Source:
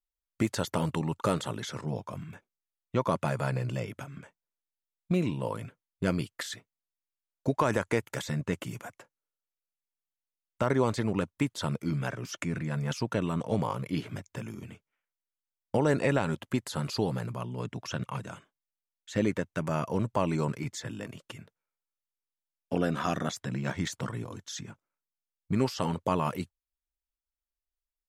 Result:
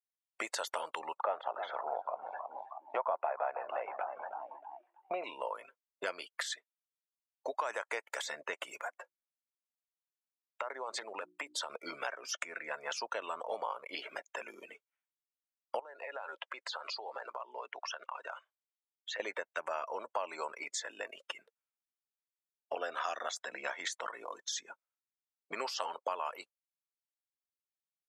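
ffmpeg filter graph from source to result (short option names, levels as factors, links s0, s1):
-filter_complex "[0:a]asettb=1/sr,asplit=3[s0][s1][s2];[s0]atrim=end=1.204[s3];[s1]atrim=start=1.2:end=5.24,asetpts=PTS-STARTPTS,afade=t=in:d=0.004:c=qsin,afade=t=out:st=4.036:d=0.004:c=qsin,highpass=120,lowpass=2400,equalizer=f=740:t=o:w=0.71:g=15,asplit=5[s4][s5][s6][s7][s8];[s5]adelay=317,afreqshift=55,volume=0.188[s9];[s6]adelay=634,afreqshift=110,volume=0.0813[s10];[s7]adelay=951,afreqshift=165,volume=0.0347[s11];[s8]adelay=1268,afreqshift=220,volume=0.015[s12];[s4][s9][s10][s11][s12]amix=inputs=5:normalize=0,atrim=end_sample=178164[s13];[s2]atrim=start=5.236[s14];[s3][s13]acrossfade=d=0.004:c1=hsin:c2=qsin[s15];[s15][s14]acrossfade=d=0.004:c1=qsin:c2=hsin,asettb=1/sr,asplit=3[s16][s17][s18];[s16]atrim=end=8.874[s19];[s17]atrim=start=8.87:end=11.7,asetpts=PTS-STARTPTS,afade=t=in:d=0.004:c=qsin,afade=t=out:st=2.826:d=0.004:c=qsin,bandreject=f=60:t=h:w=6,bandreject=f=120:t=h:w=6,bandreject=f=180:t=h:w=6,bandreject=f=240:t=h:w=6,bandreject=f=300:t=h:w=6,bandreject=f=360:t=h:w=6,acompressor=threshold=0.0251:ratio=6:attack=3.2:release=140:knee=1:detection=peak[s20];[s18]atrim=start=11.696[s21];[s19][s20]acrossfade=d=0.004:c1=hsin:c2=qsin[s22];[s22][s21]acrossfade=d=0.004:c1=qsin:c2=hsin,asettb=1/sr,asplit=3[s23][s24][s25];[s23]atrim=end=15.794[s26];[s24]atrim=start=15.79:end=19.2,asetpts=PTS-STARTPTS,afade=t=in:d=0.004:c=qsin,afade=t=out:st=3.406:d=0.004:c=qsin,highpass=460,lowpass=5400,acompressor=threshold=0.00891:ratio=10:attack=3.2:release=140:knee=1:detection=peak[s27];[s25]atrim=start=19.196[s28];[s26][s27]acrossfade=d=0.004:c1=hsin:c2=qsin[s29];[s29][s28]acrossfade=d=0.004:c1=qsin:c2=hsin,afftdn=nr=20:nf=-48,highpass=f=580:w=0.5412,highpass=f=580:w=1.3066,acompressor=threshold=0.00355:ratio=3,volume=3.35"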